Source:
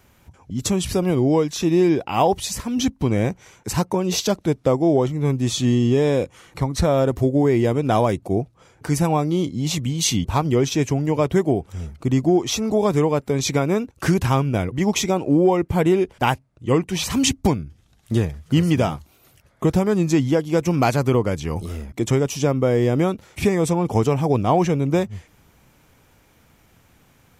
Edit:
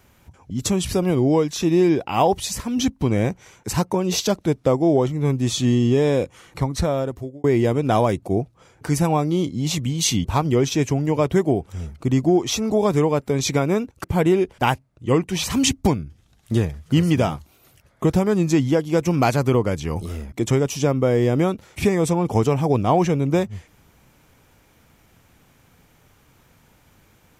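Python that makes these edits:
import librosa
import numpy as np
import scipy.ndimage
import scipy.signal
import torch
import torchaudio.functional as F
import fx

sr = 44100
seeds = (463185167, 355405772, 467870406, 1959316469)

y = fx.edit(x, sr, fx.fade_out_span(start_s=6.64, length_s=0.8),
    fx.cut(start_s=14.04, length_s=1.6), tone=tone)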